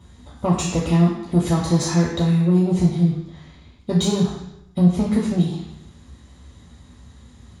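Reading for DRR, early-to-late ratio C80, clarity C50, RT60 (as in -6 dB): -4.5 dB, 6.0 dB, 3.5 dB, 0.80 s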